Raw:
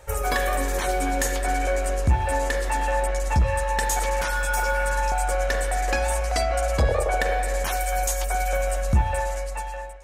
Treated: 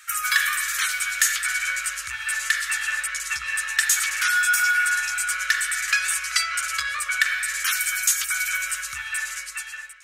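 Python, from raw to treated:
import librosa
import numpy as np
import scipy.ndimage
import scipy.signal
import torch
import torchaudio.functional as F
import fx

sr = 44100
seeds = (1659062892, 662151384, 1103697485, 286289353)

y = scipy.signal.sosfilt(scipy.signal.ellip(4, 1.0, 40, 1300.0, 'highpass', fs=sr, output='sos'), x)
y = y * 10.0 ** (8.5 / 20.0)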